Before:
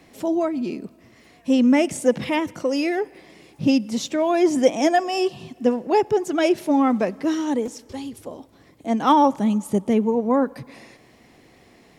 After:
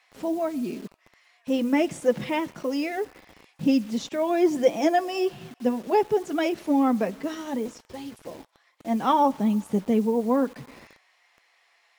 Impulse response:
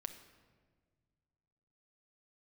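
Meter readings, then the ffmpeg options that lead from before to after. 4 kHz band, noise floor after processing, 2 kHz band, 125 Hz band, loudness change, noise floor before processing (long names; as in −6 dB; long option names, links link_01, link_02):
−5.5 dB, −65 dBFS, −4.5 dB, −3.5 dB, −4.0 dB, −53 dBFS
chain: -filter_complex "[0:a]highshelf=frequency=7400:gain=-11,flanger=delay=4:depth=2:regen=-44:speed=0.3:shape=sinusoidal,acrossover=split=840[link_01][link_02];[link_01]acrusher=bits=7:mix=0:aa=0.000001[link_03];[link_03][link_02]amix=inputs=2:normalize=0"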